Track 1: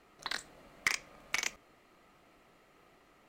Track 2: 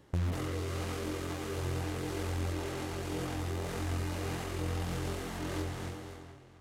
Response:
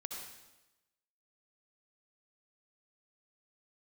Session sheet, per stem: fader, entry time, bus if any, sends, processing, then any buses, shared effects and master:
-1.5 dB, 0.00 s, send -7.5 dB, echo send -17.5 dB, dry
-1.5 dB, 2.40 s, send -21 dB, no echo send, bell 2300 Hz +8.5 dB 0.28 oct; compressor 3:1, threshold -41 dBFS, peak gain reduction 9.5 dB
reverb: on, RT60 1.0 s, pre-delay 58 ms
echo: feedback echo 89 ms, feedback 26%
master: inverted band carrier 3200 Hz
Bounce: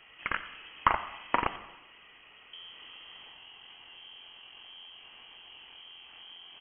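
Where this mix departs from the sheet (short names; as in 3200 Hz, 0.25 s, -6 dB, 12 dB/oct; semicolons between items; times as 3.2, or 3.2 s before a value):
stem 1 -1.5 dB -> +5.5 dB; stem 2 -1.5 dB -> -10.0 dB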